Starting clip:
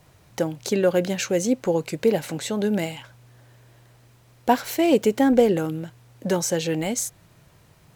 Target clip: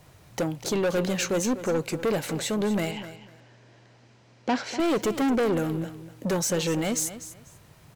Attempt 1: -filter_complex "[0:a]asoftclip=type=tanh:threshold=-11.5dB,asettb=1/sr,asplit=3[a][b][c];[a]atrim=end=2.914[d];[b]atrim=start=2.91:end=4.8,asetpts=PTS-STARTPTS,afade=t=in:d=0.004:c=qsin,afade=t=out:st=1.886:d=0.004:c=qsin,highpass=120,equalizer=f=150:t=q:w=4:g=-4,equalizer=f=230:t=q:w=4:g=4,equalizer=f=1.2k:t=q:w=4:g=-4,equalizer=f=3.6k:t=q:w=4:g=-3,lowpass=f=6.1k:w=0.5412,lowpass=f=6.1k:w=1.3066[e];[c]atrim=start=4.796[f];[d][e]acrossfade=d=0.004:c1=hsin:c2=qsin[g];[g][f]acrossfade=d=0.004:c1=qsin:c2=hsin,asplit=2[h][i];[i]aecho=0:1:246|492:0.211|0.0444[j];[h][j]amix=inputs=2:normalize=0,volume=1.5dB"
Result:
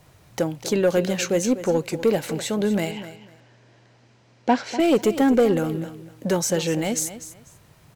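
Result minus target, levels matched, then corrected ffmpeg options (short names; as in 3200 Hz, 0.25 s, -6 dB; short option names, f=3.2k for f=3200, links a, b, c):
soft clip: distortion -10 dB
-filter_complex "[0:a]asoftclip=type=tanh:threshold=-22.5dB,asettb=1/sr,asplit=3[a][b][c];[a]atrim=end=2.914[d];[b]atrim=start=2.91:end=4.8,asetpts=PTS-STARTPTS,afade=t=in:d=0.004:c=qsin,afade=t=out:st=1.886:d=0.004:c=qsin,highpass=120,equalizer=f=150:t=q:w=4:g=-4,equalizer=f=230:t=q:w=4:g=4,equalizer=f=1.2k:t=q:w=4:g=-4,equalizer=f=3.6k:t=q:w=4:g=-3,lowpass=f=6.1k:w=0.5412,lowpass=f=6.1k:w=1.3066[e];[c]atrim=start=4.796[f];[d][e]acrossfade=d=0.004:c1=hsin:c2=qsin[g];[g][f]acrossfade=d=0.004:c1=qsin:c2=hsin,asplit=2[h][i];[i]aecho=0:1:246|492:0.211|0.0444[j];[h][j]amix=inputs=2:normalize=0,volume=1.5dB"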